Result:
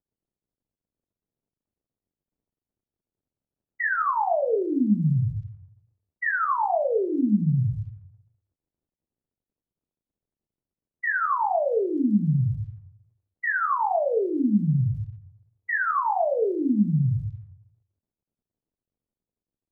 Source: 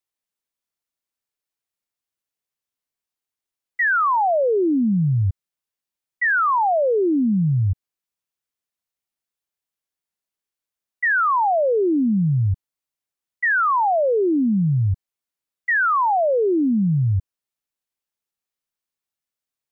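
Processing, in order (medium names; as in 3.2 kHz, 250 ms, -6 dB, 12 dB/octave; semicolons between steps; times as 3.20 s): simulated room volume 330 m³, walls furnished, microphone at 1.5 m; crackle 180 per s -50 dBFS; level-controlled noise filter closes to 350 Hz, open at -14 dBFS; trim -8 dB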